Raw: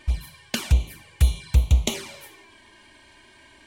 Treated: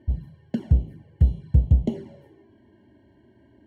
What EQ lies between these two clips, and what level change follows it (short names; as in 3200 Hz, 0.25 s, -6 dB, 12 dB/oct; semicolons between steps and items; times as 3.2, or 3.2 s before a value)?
running mean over 36 samples; HPF 70 Hz; bell 160 Hz +10.5 dB 2.9 oct; -3.0 dB